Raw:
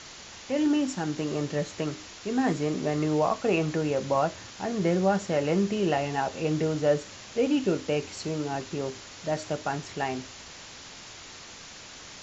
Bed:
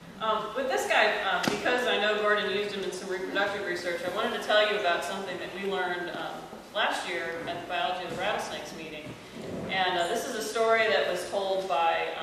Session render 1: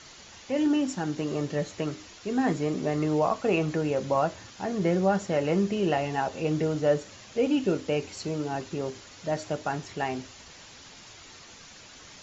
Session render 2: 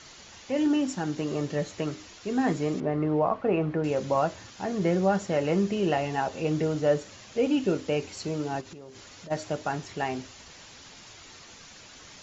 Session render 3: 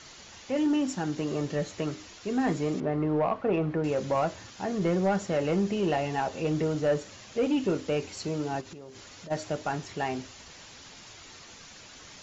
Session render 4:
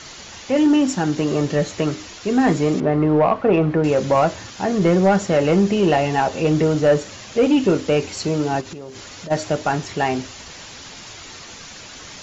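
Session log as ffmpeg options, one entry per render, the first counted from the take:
-af "afftdn=nr=6:nf=-45"
-filter_complex "[0:a]asettb=1/sr,asplit=3[a][b][c];[a]atrim=end=2.804[d];[b]atrim=start=2.8:end=3.84,asetpts=PTS-STARTPTS,afade=t=in:d=0.004:c=qsin,afade=t=out:st=1.036:d=0.004:c=qsin,lowpass=1.8k[e];[c]atrim=start=3.836[f];[d][e]acrossfade=d=0.004:c1=hsin:c2=qsin[g];[g][f]acrossfade=d=0.004:c1=qsin:c2=hsin,asplit=3[h][i][j];[h]afade=t=out:st=8.6:d=0.02[k];[i]acompressor=threshold=-41dB:ratio=8:attack=3.2:release=140:knee=1:detection=peak,afade=t=in:st=8.6:d=0.02,afade=t=out:st=9.3:d=0.02[l];[j]afade=t=in:st=9.3:d=0.02[m];[k][l][m]amix=inputs=3:normalize=0"
-af "asoftclip=type=tanh:threshold=-18dB"
-af "volume=10.5dB"

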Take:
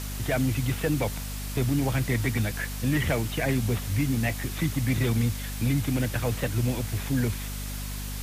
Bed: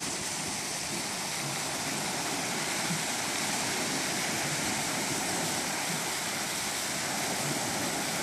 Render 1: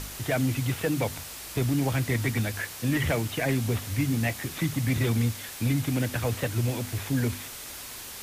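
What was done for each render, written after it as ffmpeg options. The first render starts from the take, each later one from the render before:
-af "bandreject=f=50:t=h:w=4,bandreject=f=100:t=h:w=4,bandreject=f=150:t=h:w=4,bandreject=f=200:t=h:w=4,bandreject=f=250:t=h:w=4"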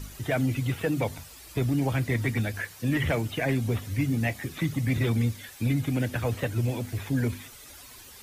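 -af "afftdn=nr=11:nf=-41"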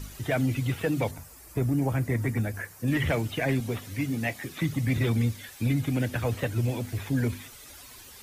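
-filter_complex "[0:a]asettb=1/sr,asplit=3[a][b][c];[a]atrim=end=1.114[d];[b]atrim=start=1.11:end=2.88,asetpts=PTS-STARTPTS,afade=t=in:d=0.004:c=qsin,afade=t=out:st=1.766:d=0.004:c=qsin,equalizer=f=3.5k:w=1.1:g=-12[e];[c]atrim=start=2.876[f];[d][e]acrossfade=d=0.004:c1=hsin:c2=qsin[g];[g][f]acrossfade=d=0.004:c1=qsin:c2=hsin,asettb=1/sr,asplit=3[h][i][j];[h]atrim=end=3.604[k];[i]atrim=start=3.6:end=4.61,asetpts=PTS-STARTPTS,afade=t=in:d=0.004:c=qsin,afade=t=out:st=1.006:d=0.004:c=qsin,highpass=f=200:p=1[l];[j]atrim=start=4.606[m];[k][l]acrossfade=d=0.004:c1=hsin:c2=qsin[n];[n][m]acrossfade=d=0.004:c1=qsin:c2=hsin"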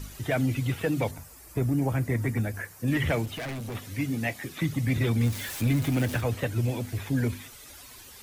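-filter_complex "[0:a]asettb=1/sr,asplit=3[a][b][c];[a]atrim=end=3.254[d];[b]atrim=start=3.25:end=3.75,asetpts=PTS-STARTPTS,afade=t=in:d=0.004:c=qsin,afade=t=out:st=0.496:d=0.004:c=qsin,volume=32.5dB,asoftclip=hard,volume=-32.5dB[e];[c]atrim=start=3.746[f];[d][e]acrossfade=d=0.004:c1=hsin:c2=qsin[g];[g][f]acrossfade=d=0.004:c1=qsin:c2=hsin,asettb=1/sr,asplit=3[h][i][j];[h]atrim=end=5.214[k];[i]atrim=start=5.21:end=6.21,asetpts=PTS-STARTPTS,afade=t=in:d=0.004:c=qsin,afade=t=out:st=0.996:d=0.004:c=qsin,aeval=exprs='val(0)+0.5*0.0224*sgn(val(0))':c=same[l];[j]atrim=start=6.206[m];[k][l]acrossfade=d=0.004:c1=hsin:c2=qsin[n];[n][m]acrossfade=d=0.004:c1=qsin:c2=hsin"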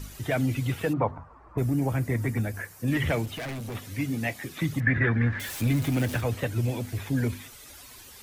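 -filter_complex "[0:a]asplit=3[a][b][c];[a]afade=t=out:st=0.92:d=0.02[d];[b]lowpass=f=1.1k:t=q:w=3.6,afade=t=in:st=0.92:d=0.02,afade=t=out:st=1.57:d=0.02[e];[c]afade=t=in:st=1.57:d=0.02[f];[d][e][f]amix=inputs=3:normalize=0,asettb=1/sr,asplit=3[g][h][i];[g]atrim=end=4.804[j];[h]atrim=start=4.8:end=5.4,asetpts=PTS-STARTPTS,afade=t=in:d=0.004:c=qsin,afade=t=out:st=0.596:d=0.004:c=qsin,lowpass=f=1.7k:t=q:w=13[k];[i]atrim=start=5.396[l];[j][k]acrossfade=d=0.004:c1=hsin:c2=qsin[m];[m][l]acrossfade=d=0.004:c1=qsin:c2=hsin"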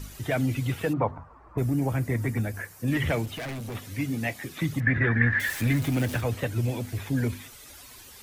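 -filter_complex "[0:a]asettb=1/sr,asplit=3[a][b][c];[a]atrim=end=5.104[d];[b]atrim=start=5.1:end=5.78,asetpts=PTS-STARTPTS,afade=t=in:d=0.004:c=qsin,afade=t=out:st=0.676:d=0.004:c=qsin,equalizer=f=1.8k:t=o:w=0.41:g=13.5[e];[c]atrim=start=5.776[f];[d][e]acrossfade=d=0.004:c1=hsin:c2=qsin[g];[g][f]acrossfade=d=0.004:c1=qsin:c2=hsin"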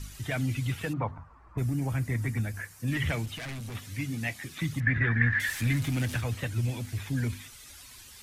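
-af "lowpass=12k,equalizer=f=490:t=o:w=2.2:g=-9.5"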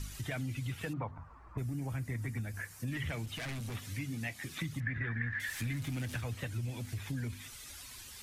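-af "acompressor=threshold=-37dB:ratio=3"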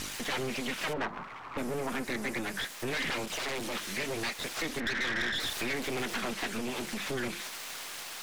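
-filter_complex "[0:a]aeval=exprs='abs(val(0))':c=same,asplit=2[a][b];[b]highpass=f=720:p=1,volume=24dB,asoftclip=type=tanh:threshold=-23dB[c];[a][c]amix=inputs=2:normalize=0,lowpass=f=4.2k:p=1,volume=-6dB"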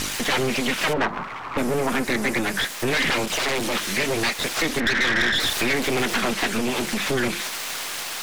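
-af "volume=11dB"

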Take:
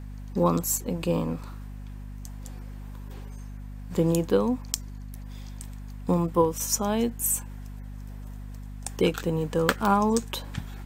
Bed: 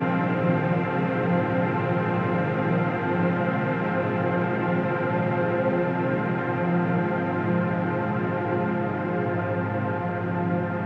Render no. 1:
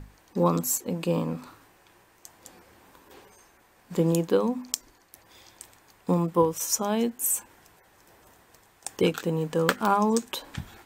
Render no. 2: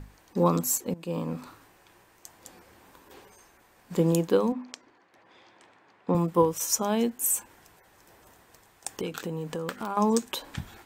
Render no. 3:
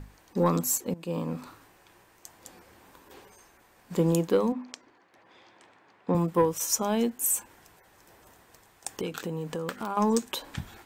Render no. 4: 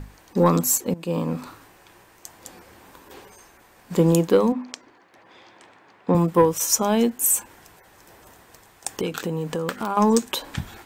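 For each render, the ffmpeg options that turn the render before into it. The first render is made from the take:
-af "bandreject=f=50:t=h:w=6,bandreject=f=100:t=h:w=6,bandreject=f=150:t=h:w=6,bandreject=f=200:t=h:w=6,bandreject=f=250:t=h:w=6"
-filter_complex "[0:a]asettb=1/sr,asplit=3[a][b][c];[a]atrim=end=4.524[d];[b]atrim=start=4.52:end=6.15,asetpts=PTS-STARTPTS,afade=t=in:d=0.004:c=qsin,afade=t=out:st=1.626:d=0.004:c=qsin,highpass=180,lowpass=2.7k[e];[c]atrim=start=6.146[f];[d][e]acrossfade=d=0.004:c1=hsin:c2=qsin[g];[g][f]acrossfade=d=0.004:c1=qsin:c2=hsin,asettb=1/sr,asplit=3[h][i][j];[h]atrim=end=8.894[k];[i]atrim=start=8.89:end=9.97,asetpts=PTS-STARTPTS,afade=t=in:d=0.004:c=qsin,afade=t=out:st=1.076:d=0.004:c=qsin,acompressor=threshold=-30dB:ratio=4:attack=3.2:release=140:knee=1:detection=peak[l];[j]atrim=start=9.966[m];[k][l]acrossfade=d=0.004:c1=hsin:c2=qsin[n];[n][m]acrossfade=d=0.004:c1=qsin:c2=hsin,asplit=2[o][p];[o]atrim=end=0.94,asetpts=PTS-STARTPTS,afade=t=out:st=0.936:d=0.004:c=hsin:silence=0.158489[q];[p]atrim=start=0.94,asetpts=PTS-STARTPTS,afade=t=in:d=0.46:silence=0.158489[r];[q][r]concat=n=2:v=0:a=1"
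-af "asoftclip=type=tanh:threshold=-12dB"
-af "volume=6.5dB"

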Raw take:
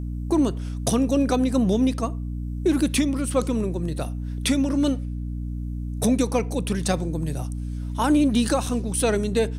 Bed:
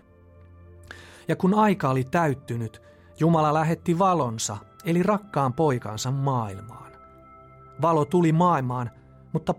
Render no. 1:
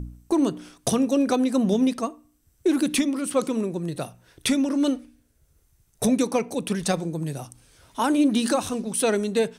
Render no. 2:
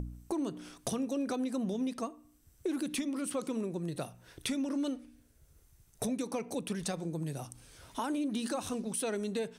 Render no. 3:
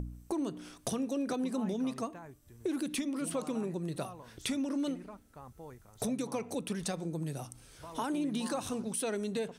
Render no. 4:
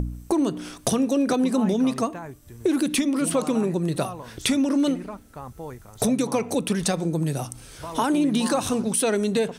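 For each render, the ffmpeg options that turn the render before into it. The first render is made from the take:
-af "bandreject=f=60:t=h:w=4,bandreject=f=120:t=h:w=4,bandreject=f=180:t=h:w=4,bandreject=f=240:t=h:w=4,bandreject=f=300:t=h:w=4"
-af "alimiter=limit=-16.5dB:level=0:latency=1:release=160,acompressor=threshold=-39dB:ratio=2"
-filter_complex "[1:a]volume=-27dB[a];[0:a][a]amix=inputs=2:normalize=0"
-af "volume=12dB"

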